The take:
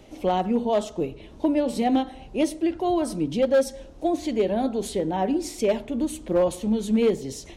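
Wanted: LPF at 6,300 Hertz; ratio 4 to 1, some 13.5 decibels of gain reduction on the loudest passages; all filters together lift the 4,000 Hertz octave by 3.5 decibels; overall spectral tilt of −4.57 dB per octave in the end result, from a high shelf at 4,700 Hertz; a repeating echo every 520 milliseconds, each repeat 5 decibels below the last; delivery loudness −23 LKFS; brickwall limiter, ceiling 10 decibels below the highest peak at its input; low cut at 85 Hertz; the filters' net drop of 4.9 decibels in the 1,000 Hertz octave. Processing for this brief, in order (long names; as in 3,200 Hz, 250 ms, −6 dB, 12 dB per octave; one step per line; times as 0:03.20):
high-pass filter 85 Hz
low-pass filter 6,300 Hz
parametric band 1,000 Hz −8.5 dB
parametric band 4,000 Hz +3 dB
high-shelf EQ 4,700 Hz +6 dB
downward compressor 4 to 1, threshold −35 dBFS
brickwall limiter −32 dBFS
repeating echo 520 ms, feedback 56%, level −5 dB
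level +16 dB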